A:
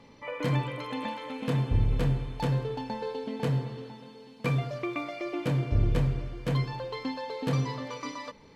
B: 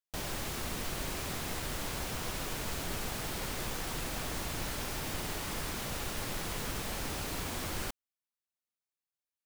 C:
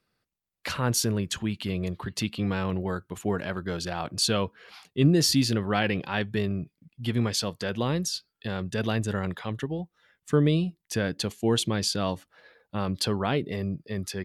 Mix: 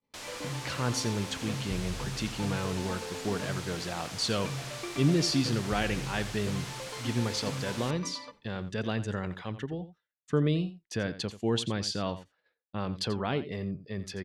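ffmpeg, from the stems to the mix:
-filter_complex "[0:a]acompressor=threshold=0.0447:ratio=6,volume=0.473,asplit=2[s0][s1];[s1]volume=0.119[s2];[1:a]alimiter=level_in=3.16:limit=0.0631:level=0:latency=1,volume=0.316,highpass=f=420:p=1,aeval=exprs='0.0237*sin(PI/2*6.31*val(0)/0.0237)':c=same,volume=0.668,asplit=2[s3][s4];[s4]volume=0.0708[s5];[2:a]volume=0.596,asplit=2[s6][s7];[s7]volume=0.2[s8];[s2][s5][s8]amix=inputs=3:normalize=0,aecho=0:1:87:1[s9];[s0][s3][s6][s9]amix=inputs=4:normalize=0,agate=range=0.0224:threshold=0.00447:ratio=3:detection=peak,lowpass=6800"

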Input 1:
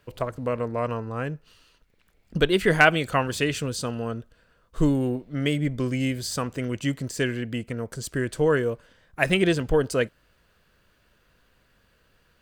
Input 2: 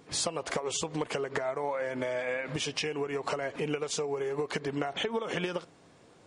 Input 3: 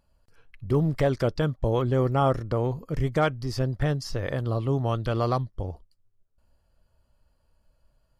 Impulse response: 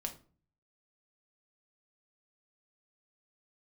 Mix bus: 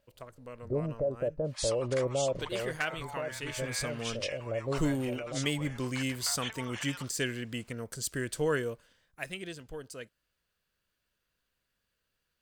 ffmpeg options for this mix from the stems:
-filter_complex "[0:a]highshelf=f=2700:g=11,volume=0.376,afade=t=in:st=3.4:d=0.63:silence=0.281838,afade=t=out:st=8.58:d=0.72:silence=0.223872,asplit=2[s0][s1];[1:a]highpass=f=920:w=0.5412,highpass=f=920:w=1.3066,adelay=1450,volume=0.631[s2];[2:a]lowpass=f=580:t=q:w=6.8,alimiter=limit=0.251:level=0:latency=1:release=81,volume=0.282[s3];[s1]apad=whole_len=361373[s4];[s3][s4]sidechaincompress=threshold=0.0141:ratio=8:attack=16:release=1210[s5];[s0][s2][s5]amix=inputs=3:normalize=0"

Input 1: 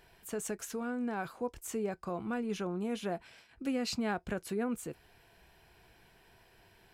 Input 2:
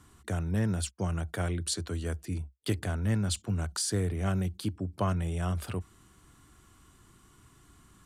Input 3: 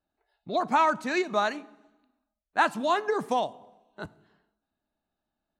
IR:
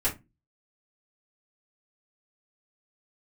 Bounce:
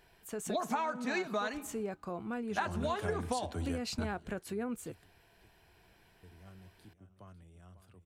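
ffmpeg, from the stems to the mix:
-filter_complex "[0:a]volume=0.75[s0];[1:a]adelay=1650,volume=0.708,asplit=3[s1][s2][s3];[s1]atrim=end=4.49,asetpts=PTS-STARTPTS,afade=t=out:st=4.486:d=0.004:c=hsin[s4];[s2]atrim=start=4.49:end=5.68,asetpts=PTS-STARTPTS,volume=0[s5];[s3]atrim=start=5.68,asetpts=PTS-STARTPTS,afade=t=in:d=0.004:c=hsin[s6];[s4][s5][s6]concat=n=3:v=0:a=1,asplit=2[s7][s8];[s8]volume=0.075[s9];[2:a]flanger=delay=3.6:depth=1.5:regen=-39:speed=0.57:shape=triangular,volume=1.19,asplit=2[s10][s11];[s11]apad=whole_len=428176[s12];[s7][s12]sidechaingate=range=0.00794:threshold=0.00126:ratio=16:detection=peak[s13];[s9]aecho=0:1:549|1098|1647|2196:1|0.24|0.0576|0.0138[s14];[s0][s13][s10][s14]amix=inputs=4:normalize=0,acompressor=threshold=0.0316:ratio=12"

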